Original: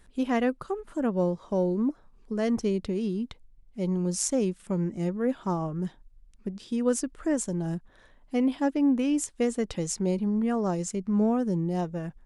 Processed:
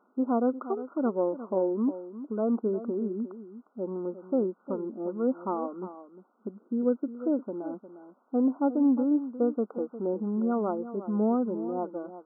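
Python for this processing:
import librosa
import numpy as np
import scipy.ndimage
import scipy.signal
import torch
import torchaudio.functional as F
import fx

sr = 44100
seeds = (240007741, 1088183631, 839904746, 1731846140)

y = fx.peak_eq(x, sr, hz=1100.0, db=-10.5, octaves=0.77, at=(6.49, 7.39))
y = fx.quant_dither(y, sr, seeds[0], bits=10, dither='triangular')
y = fx.brickwall_bandpass(y, sr, low_hz=200.0, high_hz=1500.0)
y = y + 10.0 ** (-13.0 / 20.0) * np.pad(y, (int(355 * sr / 1000.0), 0))[:len(y)]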